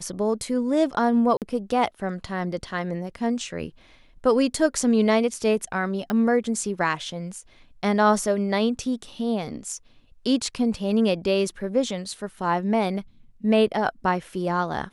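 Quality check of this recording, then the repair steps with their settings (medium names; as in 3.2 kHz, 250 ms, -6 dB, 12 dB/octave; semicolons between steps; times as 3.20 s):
1.37–1.42 s: dropout 48 ms
6.10 s: pop -14 dBFS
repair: de-click; interpolate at 1.37 s, 48 ms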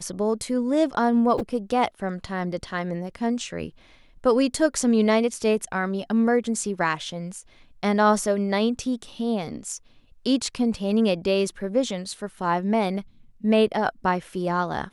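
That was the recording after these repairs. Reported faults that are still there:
nothing left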